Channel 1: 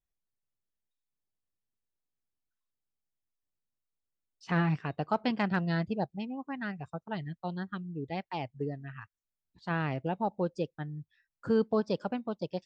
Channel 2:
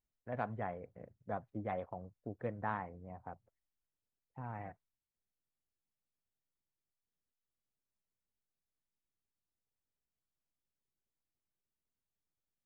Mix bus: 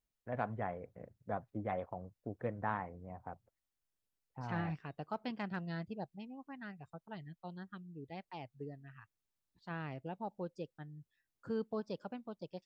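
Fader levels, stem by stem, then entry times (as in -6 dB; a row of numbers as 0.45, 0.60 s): -11.0, +1.0 dB; 0.00, 0.00 s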